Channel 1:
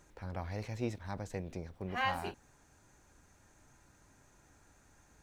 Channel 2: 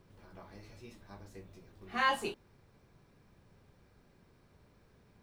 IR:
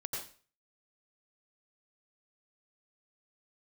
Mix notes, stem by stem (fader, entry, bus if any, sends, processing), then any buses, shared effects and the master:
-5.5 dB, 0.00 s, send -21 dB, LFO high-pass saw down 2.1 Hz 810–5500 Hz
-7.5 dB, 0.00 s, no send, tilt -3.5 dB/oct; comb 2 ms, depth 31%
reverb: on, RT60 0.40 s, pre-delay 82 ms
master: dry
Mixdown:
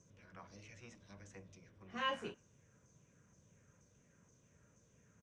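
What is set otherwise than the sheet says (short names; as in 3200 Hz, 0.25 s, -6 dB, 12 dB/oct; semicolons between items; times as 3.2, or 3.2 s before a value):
stem 1 -5.5 dB -> -13.0 dB; master: extra speaker cabinet 170–8700 Hz, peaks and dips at 380 Hz -9 dB, 850 Hz -8 dB, 2900 Hz +3 dB, 4300 Hz -8 dB, 6100 Hz +9 dB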